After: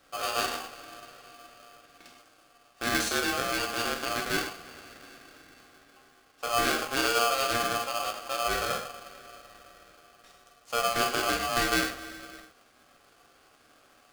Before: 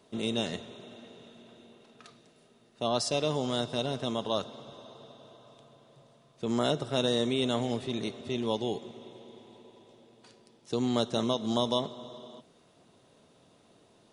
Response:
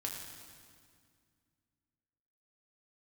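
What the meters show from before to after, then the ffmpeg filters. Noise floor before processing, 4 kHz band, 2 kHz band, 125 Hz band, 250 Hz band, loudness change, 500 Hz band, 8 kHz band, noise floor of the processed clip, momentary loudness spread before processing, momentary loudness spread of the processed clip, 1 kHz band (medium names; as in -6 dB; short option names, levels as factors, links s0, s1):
-63 dBFS, +2.5 dB, +14.5 dB, -8.0 dB, -5.5 dB, +2.5 dB, -2.0 dB, +10.0 dB, -61 dBFS, 20 LU, 19 LU, +7.5 dB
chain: -filter_complex "[1:a]atrim=start_sample=2205,atrim=end_sample=3969,asetrate=31752,aresample=44100[s0];[0:a][s0]afir=irnorm=-1:irlink=0,aeval=exprs='val(0)*sgn(sin(2*PI*940*n/s))':c=same"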